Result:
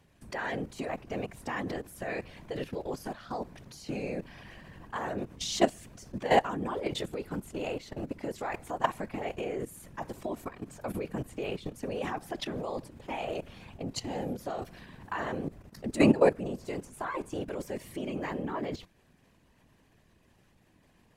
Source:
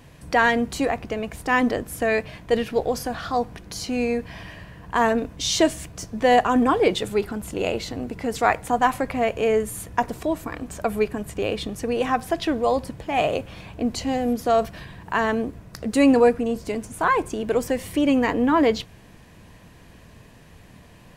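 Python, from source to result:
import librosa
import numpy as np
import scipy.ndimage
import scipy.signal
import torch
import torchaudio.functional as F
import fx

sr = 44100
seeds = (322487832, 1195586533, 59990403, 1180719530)

y = fx.level_steps(x, sr, step_db=15)
y = fx.whisperise(y, sr, seeds[0])
y = F.gain(torch.from_numpy(y), -4.0).numpy()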